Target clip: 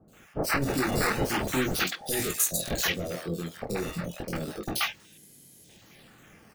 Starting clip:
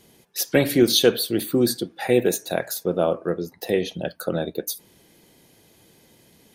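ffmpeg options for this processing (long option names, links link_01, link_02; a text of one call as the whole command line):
ffmpeg -i in.wav -filter_complex "[0:a]highpass=frequency=180:poles=1,asoftclip=type=hard:threshold=-22dB,bass=frequency=250:gain=13,treble=frequency=4000:gain=15,flanger=delay=18.5:depth=6.5:speed=0.41,asettb=1/sr,asplit=3[link_01][link_02][link_03];[link_01]atrim=end=1.794[link_04];[link_02]atrim=start=1.79:end=3,asetpts=PTS-STARTPTS,afade=type=in:duration=0.004:curve=qsin,afade=type=out:start_time=1.206:duration=0.004:curve=qsin,highshelf=frequency=2900:gain=10[link_05];[link_03]atrim=start=2.996[link_06];[link_04][link_05]acrossfade=duration=0.004:curve1=hsin:curve2=qsin[link_07];[link_07][link_06]acrossfade=duration=0.004:curve1=qsin:curve2=hsin,acrusher=samples=8:mix=1:aa=0.000001:lfo=1:lforange=12.8:lforate=0.33,alimiter=limit=-9dB:level=0:latency=1:release=262,bandreject=frequency=1000:width=6.6,acrossover=split=760|4100[link_08][link_09][link_10];[link_10]adelay=80[link_11];[link_09]adelay=130[link_12];[link_08][link_12][link_11]amix=inputs=3:normalize=0,volume=-4.5dB" out.wav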